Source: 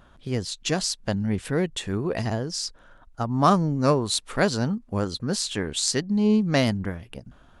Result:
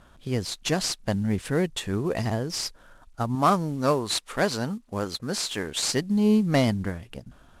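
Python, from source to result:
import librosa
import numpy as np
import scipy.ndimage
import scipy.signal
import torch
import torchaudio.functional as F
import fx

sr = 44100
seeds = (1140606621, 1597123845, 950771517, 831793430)

y = fx.cvsd(x, sr, bps=64000)
y = fx.low_shelf(y, sr, hz=260.0, db=-7.5, at=(3.35, 5.91))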